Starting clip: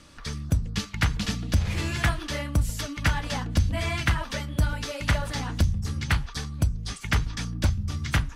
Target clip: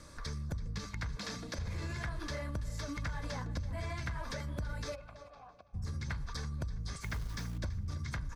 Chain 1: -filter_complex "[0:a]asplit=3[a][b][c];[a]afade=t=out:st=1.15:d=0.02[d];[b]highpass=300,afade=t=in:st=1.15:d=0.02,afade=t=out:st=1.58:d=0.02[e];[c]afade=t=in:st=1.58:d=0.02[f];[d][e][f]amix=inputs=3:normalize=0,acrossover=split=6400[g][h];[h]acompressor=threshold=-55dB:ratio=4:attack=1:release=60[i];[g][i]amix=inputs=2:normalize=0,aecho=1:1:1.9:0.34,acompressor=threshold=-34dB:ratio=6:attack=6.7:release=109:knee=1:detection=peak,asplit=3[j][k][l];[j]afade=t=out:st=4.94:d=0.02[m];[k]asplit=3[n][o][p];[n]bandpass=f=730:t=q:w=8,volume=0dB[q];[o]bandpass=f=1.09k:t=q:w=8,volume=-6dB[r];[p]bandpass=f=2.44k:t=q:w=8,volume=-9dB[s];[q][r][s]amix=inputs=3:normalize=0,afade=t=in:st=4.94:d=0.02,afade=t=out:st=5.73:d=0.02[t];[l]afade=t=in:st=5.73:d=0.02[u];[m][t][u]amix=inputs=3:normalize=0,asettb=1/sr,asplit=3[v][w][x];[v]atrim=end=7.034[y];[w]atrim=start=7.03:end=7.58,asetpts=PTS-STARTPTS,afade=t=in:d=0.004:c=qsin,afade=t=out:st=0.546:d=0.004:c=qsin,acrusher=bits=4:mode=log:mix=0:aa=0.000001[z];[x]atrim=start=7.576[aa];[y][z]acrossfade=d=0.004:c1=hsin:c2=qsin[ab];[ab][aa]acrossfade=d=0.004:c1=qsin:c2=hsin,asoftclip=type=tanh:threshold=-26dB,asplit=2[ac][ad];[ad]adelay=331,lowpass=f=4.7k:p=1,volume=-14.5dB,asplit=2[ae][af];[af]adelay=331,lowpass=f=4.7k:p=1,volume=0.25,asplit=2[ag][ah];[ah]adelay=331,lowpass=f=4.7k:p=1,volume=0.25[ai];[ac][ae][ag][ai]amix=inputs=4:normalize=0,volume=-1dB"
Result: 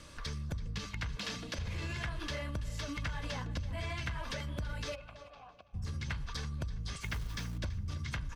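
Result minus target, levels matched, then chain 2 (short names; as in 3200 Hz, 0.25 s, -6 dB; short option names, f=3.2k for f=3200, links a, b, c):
4000 Hz band +3.5 dB
-filter_complex "[0:a]asplit=3[a][b][c];[a]afade=t=out:st=1.15:d=0.02[d];[b]highpass=300,afade=t=in:st=1.15:d=0.02,afade=t=out:st=1.58:d=0.02[e];[c]afade=t=in:st=1.58:d=0.02[f];[d][e][f]amix=inputs=3:normalize=0,acrossover=split=6400[g][h];[h]acompressor=threshold=-55dB:ratio=4:attack=1:release=60[i];[g][i]amix=inputs=2:normalize=0,aecho=1:1:1.9:0.34,acompressor=threshold=-34dB:ratio=6:attack=6.7:release=109:knee=1:detection=peak,equalizer=f=2.9k:t=o:w=0.45:g=-14,asplit=3[j][k][l];[j]afade=t=out:st=4.94:d=0.02[m];[k]asplit=3[n][o][p];[n]bandpass=f=730:t=q:w=8,volume=0dB[q];[o]bandpass=f=1.09k:t=q:w=8,volume=-6dB[r];[p]bandpass=f=2.44k:t=q:w=8,volume=-9dB[s];[q][r][s]amix=inputs=3:normalize=0,afade=t=in:st=4.94:d=0.02,afade=t=out:st=5.73:d=0.02[t];[l]afade=t=in:st=5.73:d=0.02[u];[m][t][u]amix=inputs=3:normalize=0,asettb=1/sr,asplit=3[v][w][x];[v]atrim=end=7.034[y];[w]atrim=start=7.03:end=7.58,asetpts=PTS-STARTPTS,afade=t=in:d=0.004:c=qsin,afade=t=out:st=0.546:d=0.004:c=qsin,acrusher=bits=4:mode=log:mix=0:aa=0.000001[z];[x]atrim=start=7.576[aa];[y][z]acrossfade=d=0.004:c1=hsin:c2=qsin[ab];[ab][aa]acrossfade=d=0.004:c1=qsin:c2=hsin,asoftclip=type=tanh:threshold=-26dB,asplit=2[ac][ad];[ad]adelay=331,lowpass=f=4.7k:p=1,volume=-14.5dB,asplit=2[ae][af];[af]adelay=331,lowpass=f=4.7k:p=1,volume=0.25,asplit=2[ag][ah];[ah]adelay=331,lowpass=f=4.7k:p=1,volume=0.25[ai];[ac][ae][ag][ai]amix=inputs=4:normalize=0,volume=-1dB"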